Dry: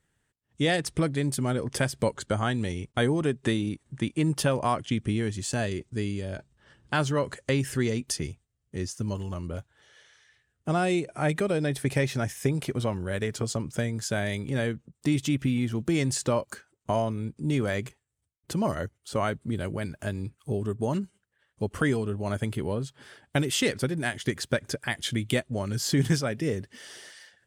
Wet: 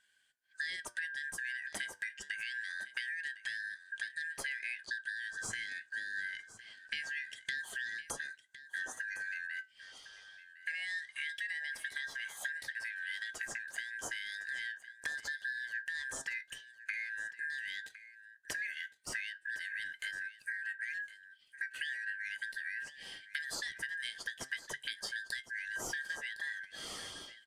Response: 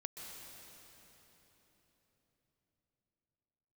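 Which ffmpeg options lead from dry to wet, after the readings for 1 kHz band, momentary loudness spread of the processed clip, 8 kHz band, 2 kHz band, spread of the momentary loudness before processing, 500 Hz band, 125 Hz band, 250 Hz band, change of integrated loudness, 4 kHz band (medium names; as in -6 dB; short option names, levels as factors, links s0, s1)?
-21.5 dB, 6 LU, -10.0 dB, 0.0 dB, 9 LU, -29.5 dB, under -35 dB, -34.5 dB, -11.0 dB, -8.0 dB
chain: -af "afftfilt=real='real(if(lt(b,272),68*(eq(floor(b/68),0)*3+eq(floor(b/68),1)*0+eq(floor(b/68),2)*1+eq(floor(b/68),3)*2)+mod(b,68),b),0)':imag='imag(if(lt(b,272),68*(eq(floor(b/68),0)*3+eq(floor(b/68),1)*0+eq(floor(b/68),2)*1+eq(floor(b/68),3)*2)+mod(b,68),b),0)':win_size=2048:overlap=0.75,acompressor=threshold=0.0126:ratio=12,flanger=delay=6.8:depth=3.5:regen=76:speed=0.24:shape=triangular,aecho=1:1:1059:0.168,aresample=32000,aresample=44100,volume=1.88"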